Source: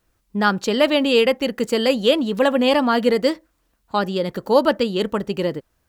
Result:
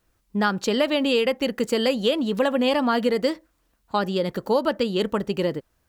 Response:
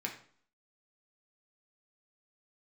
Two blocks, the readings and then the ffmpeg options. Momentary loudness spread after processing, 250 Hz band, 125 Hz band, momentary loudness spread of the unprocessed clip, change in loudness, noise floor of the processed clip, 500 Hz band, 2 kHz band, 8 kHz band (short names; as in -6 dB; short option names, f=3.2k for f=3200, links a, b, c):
6 LU, -3.0 dB, -2.0 dB, 8 LU, -4.0 dB, -69 dBFS, -4.0 dB, -4.5 dB, -2.0 dB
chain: -af "acompressor=threshold=-16dB:ratio=6,volume=-1dB"